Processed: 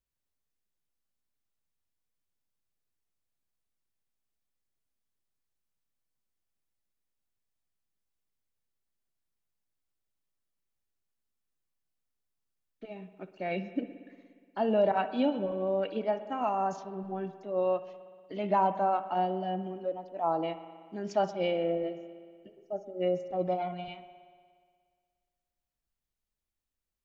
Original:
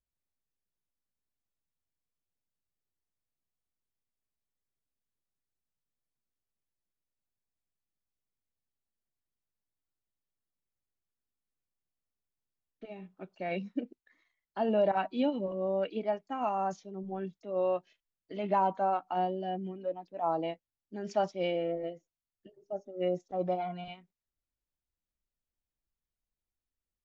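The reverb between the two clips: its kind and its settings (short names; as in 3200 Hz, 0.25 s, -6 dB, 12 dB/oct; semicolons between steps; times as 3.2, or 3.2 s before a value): spring tank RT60 1.9 s, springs 59 ms, chirp 75 ms, DRR 11.5 dB; gain +1.5 dB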